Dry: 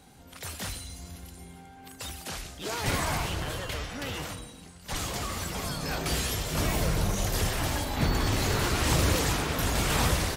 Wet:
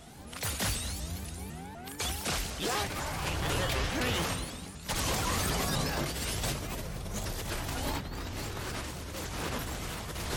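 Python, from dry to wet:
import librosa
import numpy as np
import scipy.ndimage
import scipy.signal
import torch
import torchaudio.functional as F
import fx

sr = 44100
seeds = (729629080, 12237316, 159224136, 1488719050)

p1 = x + fx.echo_single(x, sr, ms=230, db=-13.0, dry=0)
p2 = fx.over_compress(p1, sr, threshold_db=-34.0, ratio=-1.0)
y = fx.vibrato_shape(p2, sr, shape='saw_up', rate_hz=4.0, depth_cents=250.0)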